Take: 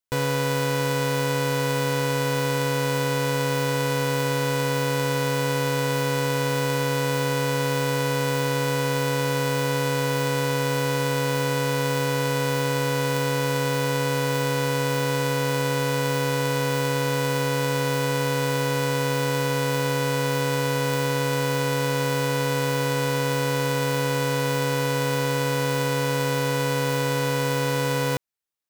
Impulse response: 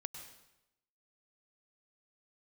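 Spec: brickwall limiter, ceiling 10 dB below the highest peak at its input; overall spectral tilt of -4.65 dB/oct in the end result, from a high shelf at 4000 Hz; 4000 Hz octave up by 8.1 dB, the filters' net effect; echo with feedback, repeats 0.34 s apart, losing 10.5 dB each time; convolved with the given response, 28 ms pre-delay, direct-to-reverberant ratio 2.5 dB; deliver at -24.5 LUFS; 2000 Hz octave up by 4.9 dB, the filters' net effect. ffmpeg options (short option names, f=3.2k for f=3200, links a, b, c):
-filter_complex "[0:a]equalizer=f=2k:t=o:g=4,highshelf=f=4k:g=4.5,equalizer=f=4k:t=o:g=6.5,alimiter=limit=-17dB:level=0:latency=1,aecho=1:1:340|680|1020:0.299|0.0896|0.0269,asplit=2[a][b];[1:a]atrim=start_sample=2205,adelay=28[c];[b][c]afir=irnorm=-1:irlink=0,volume=0dB[d];[a][d]amix=inputs=2:normalize=0,volume=-1.5dB"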